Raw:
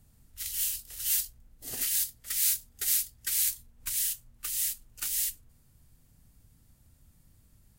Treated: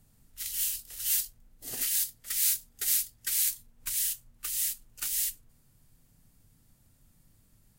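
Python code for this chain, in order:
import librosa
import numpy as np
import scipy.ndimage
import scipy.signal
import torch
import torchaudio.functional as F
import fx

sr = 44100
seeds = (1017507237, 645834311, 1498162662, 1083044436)

y = fx.peak_eq(x, sr, hz=63.0, db=-11.5, octaves=0.73)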